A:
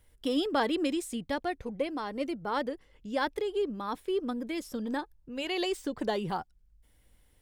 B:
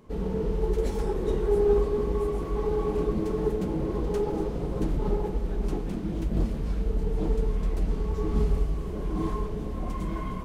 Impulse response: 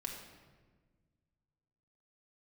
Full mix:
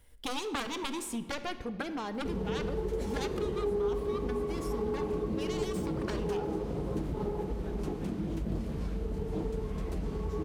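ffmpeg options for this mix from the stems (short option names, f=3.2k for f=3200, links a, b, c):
-filter_complex "[0:a]aeval=exprs='0.178*(cos(1*acos(clip(val(0)/0.178,-1,1)))-cos(1*PI/2))+0.0501*(cos(3*acos(clip(val(0)/0.178,-1,1)))-cos(3*PI/2))+0.0316*(cos(7*acos(clip(val(0)/0.178,-1,1)))-cos(7*PI/2))':c=same,volume=-1dB,asplit=2[a][b];[b]volume=-3.5dB[c];[1:a]highpass=f=53:w=0.5412,highpass=f=53:w=1.3066,adelay=2150,volume=2dB[d];[2:a]atrim=start_sample=2205[e];[c][e]afir=irnorm=-1:irlink=0[f];[a][d][f]amix=inputs=3:normalize=0,acompressor=threshold=-33dB:ratio=2.5"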